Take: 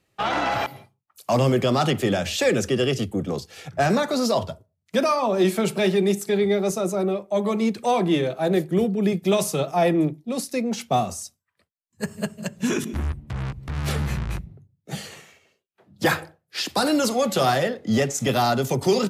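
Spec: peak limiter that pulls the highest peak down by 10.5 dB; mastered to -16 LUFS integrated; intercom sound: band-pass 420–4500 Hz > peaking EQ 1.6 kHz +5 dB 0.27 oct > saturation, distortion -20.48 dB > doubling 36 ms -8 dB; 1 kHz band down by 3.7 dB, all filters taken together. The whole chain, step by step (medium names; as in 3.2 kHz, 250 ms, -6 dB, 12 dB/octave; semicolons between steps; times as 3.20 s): peaking EQ 1 kHz -5.5 dB; peak limiter -19.5 dBFS; band-pass 420–4500 Hz; peaking EQ 1.6 kHz +5 dB 0.27 oct; saturation -22.5 dBFS; doubling 36 ms -8 dB; trim +17 dB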